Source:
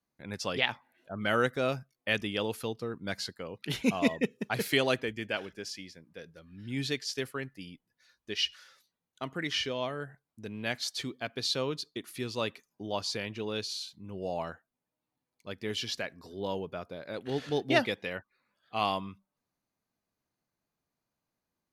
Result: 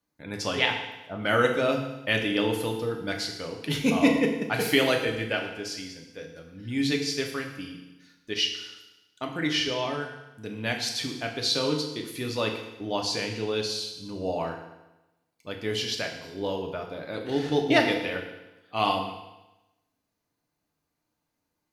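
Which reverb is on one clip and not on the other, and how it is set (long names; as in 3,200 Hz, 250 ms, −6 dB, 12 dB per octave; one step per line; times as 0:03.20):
feedback delay network reverb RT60 1 s, low-frequency decay 1.05×, high-frequency decay 1×, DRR 1.5 dB
level +3 dB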